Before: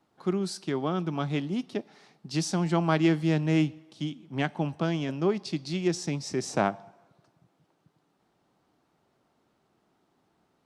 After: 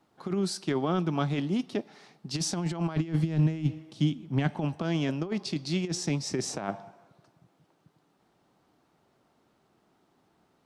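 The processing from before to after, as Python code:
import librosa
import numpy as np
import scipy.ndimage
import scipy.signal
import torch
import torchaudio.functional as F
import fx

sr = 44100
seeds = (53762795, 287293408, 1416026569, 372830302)

y = fx.over_compress(x, sr, threshold_db=-28.0, ratio=-0.5)
y = fx.low_shelf(y, sr, hz=170.0, db=11.5, at=(2.96, 4.58))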